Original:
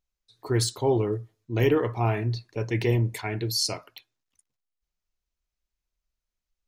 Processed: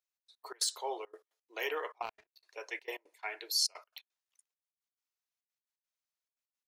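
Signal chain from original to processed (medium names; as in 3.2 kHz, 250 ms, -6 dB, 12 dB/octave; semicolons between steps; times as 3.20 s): Bessel high-pass 820 Hz, order 8; trance gate "xx.x.x.xxx" 172 bpm -24 dB; 2.02–2.43 s: power-law waveshaper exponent 2; trim -3.5 dB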